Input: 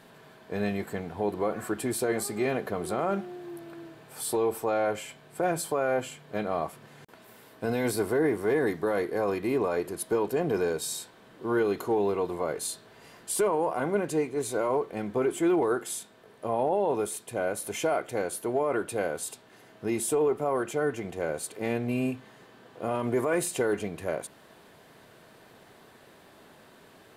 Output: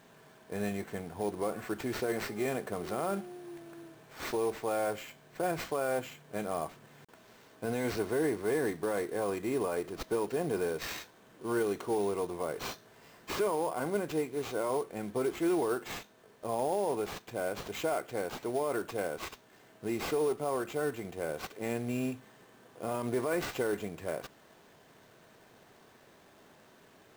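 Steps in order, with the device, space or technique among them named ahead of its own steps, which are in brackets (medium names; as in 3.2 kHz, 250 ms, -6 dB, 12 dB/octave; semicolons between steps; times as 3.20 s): early companding sampler (sample-rate reducer 10 kHz, jitter 0%; companded quantiser 6-bit); trim -5 dB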